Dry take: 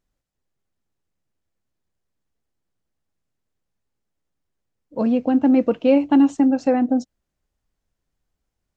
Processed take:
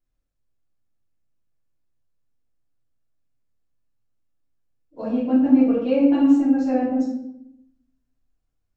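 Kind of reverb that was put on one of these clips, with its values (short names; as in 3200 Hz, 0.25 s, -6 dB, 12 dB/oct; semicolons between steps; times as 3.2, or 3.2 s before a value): shoebox room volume 190 m³, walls mixed, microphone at 3.2 m; gain -15 dB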